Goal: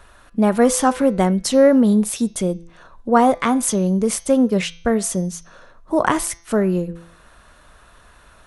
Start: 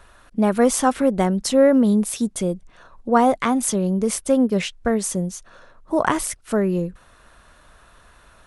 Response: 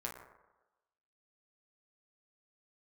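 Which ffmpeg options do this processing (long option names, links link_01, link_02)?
-filter_complex "[0:a]bandreject=frequency=169:width_type=h:width=4,bandreject=frequency=338:width_type=h:width=4,bandreject=frequency=507:width_type=h:width=4,bandreject=frequency=676:width_type=h:width=4,bandreject=frequency=845:width_type=h:width=4,bandreject=frequency=1014:width_type=h:width=4,bandreject=frequency=1183:width_type=h:width=4,bandreject=frequency=1352:width_type=h:width=4,bandreject=frequency=1521:width_type=h:width=4,bandreject=frequency=1690:width_type=h:width=4,bandreject=frequency=1859:width_type=h:width=4,bandreject=frequency=2028:width_type=h:width=4,bandreject=frequency=2197:width_type=h:width=4,bandreject=frequency=2366:width_type=h:width=4,bandreject=frequency=2535:width_type=h:width=4,bandreject=frequency=2704:width_type=h:width=4,bandreject=frequency=2873:width_type=h:width=4,bandreject=frequency=3042:width_type=h:width=4,bandreject=frequency=3211:width_type=h:width=4,bandreject=frequency=3380:width_type=h:width=4,bandreject=frequency=3549:width_type=h:width=4,bandreject=frequency=3718:width_type=h:width=4,bandreject=frequency=3887:width_type=h:width=4,bandreject=frequency=4056:width_type=h:width=4,bandreject=frequency=4225:width_type=h:width=4,bandreject=frequency=4394:width_type=h:width=4,bandreject=frequency=4563:width_type=h:width=4,bandreject=frequency=4732:width_type=h:width=4,bandreject=frequency=4901:width_type=h:width=4,bandreject=frequency=5070:width_type=h:width=4,bandreject=frequency=5239:width_type=h:width=4,bandreject=frequency=5408:width_type=h:width=4,bandreject=frequency=5577:width_type=h:width=4,bandreject=frequency=5746:width_type=h:width=4,bandreject=frequency=5915:width_type=h:width=4,bandreject=frequency=6084:width_type=h:width=4,bandreject=frequency=6253:width_type=h:width=4,bandreject=frequency=6422:width_type=h:width=4,asplit=2[link_01][link_02];[1:a]atrim=start_sample=2205,atrim=end_sample=3969[link_03];[link_02][link_03]afir=irnorm=-1:irlink=0,volume=-19dB[link_04];[link_01][link_04]amix=inputs=2:normalize=0,volume=1.5dB"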